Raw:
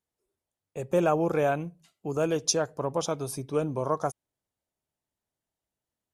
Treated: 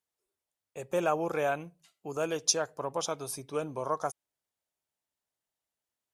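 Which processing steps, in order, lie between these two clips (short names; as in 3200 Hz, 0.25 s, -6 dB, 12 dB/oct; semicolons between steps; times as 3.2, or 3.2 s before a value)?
low shelf 440 Hz -11.5 dB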